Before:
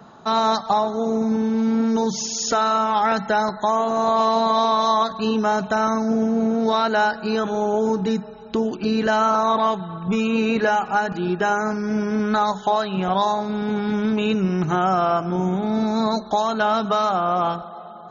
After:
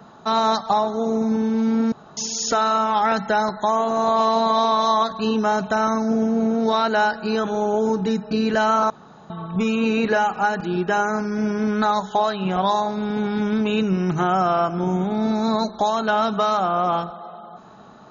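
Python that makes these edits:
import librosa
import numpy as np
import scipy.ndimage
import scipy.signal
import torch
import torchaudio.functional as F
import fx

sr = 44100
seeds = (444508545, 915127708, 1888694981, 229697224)

y = fx.edit(x, sr, fx.room_tone_fill(start_s=1.92, length_s=0.25),
    fx.cut(start_s=8.31, length_s=0.52),
    fx.room_tone_fill(start_s=9.42, length_s=0.4), tone=tone)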